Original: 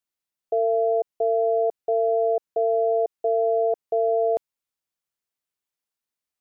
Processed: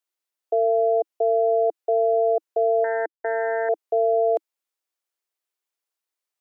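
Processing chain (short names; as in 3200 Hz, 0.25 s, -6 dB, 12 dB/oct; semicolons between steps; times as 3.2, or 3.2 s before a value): 2.84–3.69 power-law curve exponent 3; elliptic high-pass 320 Hz, stop band 40 dB; gain +2 dB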